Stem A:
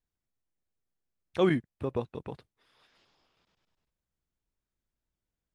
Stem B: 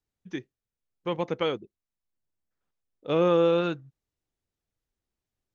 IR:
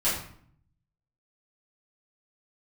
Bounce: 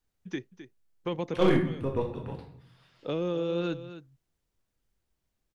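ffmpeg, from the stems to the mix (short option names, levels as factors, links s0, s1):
-filter_complex "[0:a]aeval=exprs='0.211*(cos(1*acos(clip(val(0)/0.211,-1,1)))-cos(1*PI/2))+0.0075*(cos(6*acos(clip(val(0)/0.211,-1,1)))-cos(6*PI/2))':c=same,volume=0.668,asplit=3[s0][s1][s2];[s1]volume=0.398[s3];[s2]volume=0.0944[s4];[1:a]acrossover=split=460|3000[s5][s6][s7];[s6]acompressor=threshold=0.0178:ratio=6[s8];[s5][s8][s7]amix=inputs=3:normalize=0,alimiter=level_in=1.12:limit=0.0631:level=0:latency=1:release=168,volume=0.891,volume=1.41,asplit=2[s9][s10];[s10]volume=0.224[s11];[2:a]atrim=start_sample=2205[s12];[s3][s12]afir=irnorm=-1:irlink=0[s13];[s4][s11]amix=inputs=2:normalize=0,aecho=0:1:261:1[s14];[s0][s9][s13][s14]amix=inputs=4:normalize=0,asoftclip=type=hard:threshold=0.168"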